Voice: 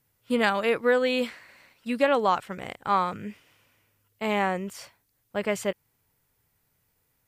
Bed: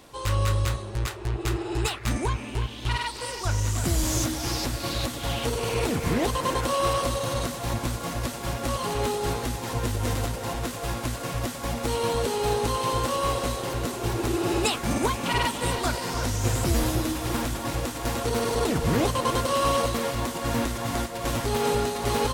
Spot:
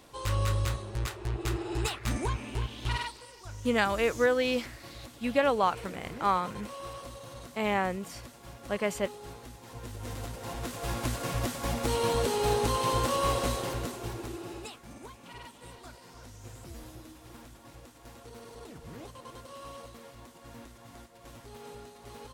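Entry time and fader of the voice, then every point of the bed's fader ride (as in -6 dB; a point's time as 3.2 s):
3.35 s, -3.0 dB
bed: 3.02 s -4.5 dB
3.26 s -17.5 dB
9.6 s -17.5 dB
11.05 s -2 dB
13.57 s -2 dB
14.88 s -22 dB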